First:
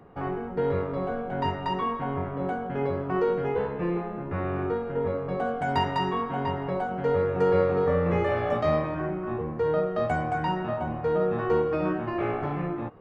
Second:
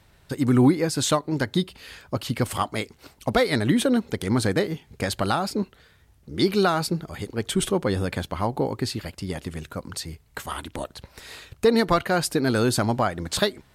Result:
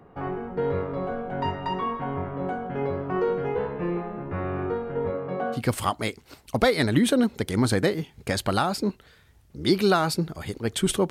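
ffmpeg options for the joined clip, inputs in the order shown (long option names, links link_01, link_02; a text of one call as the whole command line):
ffmpeg -i cue0.wav -i cue1.wav -filter_complex "[0:a]asettb=1/sr,asplit=3[link_01][link_02][link_03];[link_01]atrim=end=5.104[link_04];[link_02]atrim=start=5.1:end=5.62,asetpts=PTS-STARTPTS,afade=type=in:duration=0.004:curve=qsin,afade=type=out:start_time=0.516:duration=0.004:curve=qsin,highpass=130,lowpass=4400[link_05];[link_03]atrim=start=5.616[link_06];[link_04][link_05]acrossfade=duration=0.004:curve1=hsin:curve2=qsin[link_07];[link_07][link_06]acrossfade=duration=0.004:curve1=qsin:curve2=hsin,apad=whole_dur=11.1,atrim=end=11.1,atrim=end=5.62,asetpts=PTS-STARTPTS[link_08];[1:a]atrim=start=2.25:end=7.83,asetpts=PTS-STARTPTS[link_09];[link_08][link_09]acrossfade=duration=0.1:curve1=tri:curve2=tri" out.wav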